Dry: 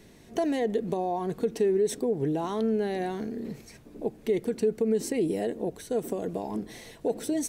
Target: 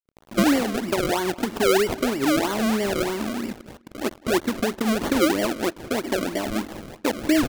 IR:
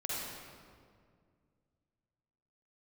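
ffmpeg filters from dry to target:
-filter_complex "[0:a]highpass=61,highshelf=f=2.9k:g=11,aecho=1:1:3.3:0.76,aresample=16000,acrusher=bits=6:mix=0:aa=0.000001,aresample=44100,adynamicsmooth=sensitivity=3.5:basefreq=4k,acrusher=samples=34:mix=1:aa=0.000001:lfo=1:lforange=34:lforate=3.1,asplit=2[a][b];[b]adelay=204,lowpass=f=4.5k:p=1,volume=-20.5dB,asplit=2[c][d];[d]adelay=204,lowpass=f=4.5k:p=1,volume=0.31[e];[a][c][e]amix=inputs=3:normalize=0,volume=4.5dB"

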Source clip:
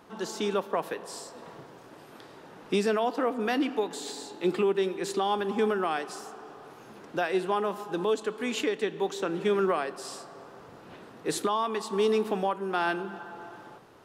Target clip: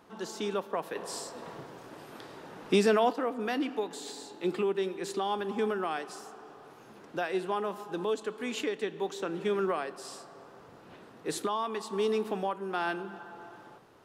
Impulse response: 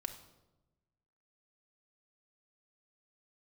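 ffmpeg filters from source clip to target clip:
-filter_complex "[0:a]asettb=1/sr,asplit=3[a][b][c];[a]atrim=end=0.954[d];[b]atrim=start=0.95:end=3.13,asetpts=PTS-STARTPTS,afade=t=in:d=0.004:c=qsin,afade=t=out:st=2.176:d=0.004:c=qsin,acontrast=56[e];[c]atrim=start=3.126[f];[d][e]acrossfade=d=0.004:c1=hsin:c2=qsin[g];[g][f]acrossfade=d=0.004:c1=qsin:c2=hsin,volume=-4dB"

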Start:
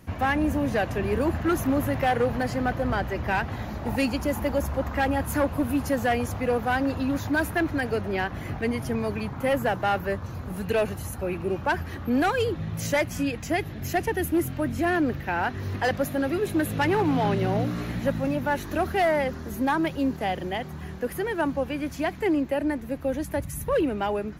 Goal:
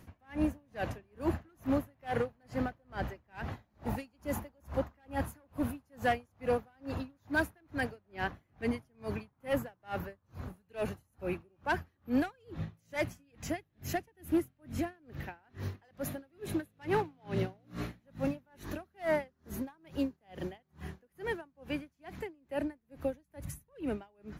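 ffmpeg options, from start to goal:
-af "aeval=exprs='val(0)*pow(10,-38*(0.5-0.5*cos(2*PI*2.3*n/s))/20)':c=same,volume=-4dB"

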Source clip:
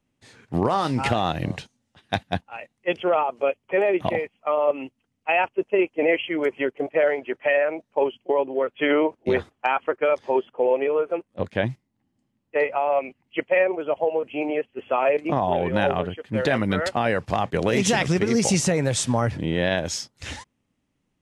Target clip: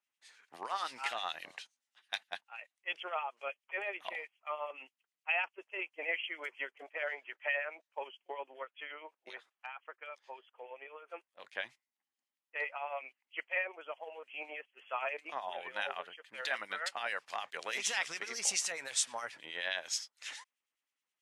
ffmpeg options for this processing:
-filter_complex "[0:a]highpass=1.3k,asplit=3[a][b][c];[a]afade=t=out:st=8.63:d=0.02[d];[b]acompressor=threshold=-44dB:ratio=2,afade=t=in:st=8.63:d=0.02,afade=t=out:st=11.07:d=0.02[e];[c]afade=t=in:st=11.07:d=0.02[f];[d][e][f]amix=inputs=3:normalize=0,acrossover=split=2000[g][h];[g]aeval=exprs='val(0)*(1-0.7/2+0.7/2*cos(2*PI*9.5*n/s))':c=same[i];[h]aeval=exprs='val(0)*(1-0.7/2-0.7/2*cos(2*PI*9.5*n/s))':c=same[j];[i][j]amix=inputs=2:normalize=0,volume=-4dB"

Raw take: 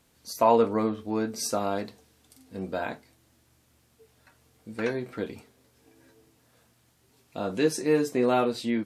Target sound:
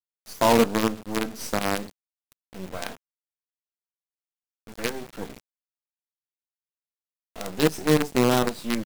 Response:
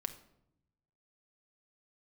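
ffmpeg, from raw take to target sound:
-af "acrusher=bits=4:dc=4:mix=0:aa=0.000001,adynamicequalizer=threshold=0.0126:dfrequency=190:dqfactor=0.85:tfrequency=190:tqfactor=0.85:attack=5:release=100:ratio=0.375:range=3:mode=boostabove:tftype=bell"

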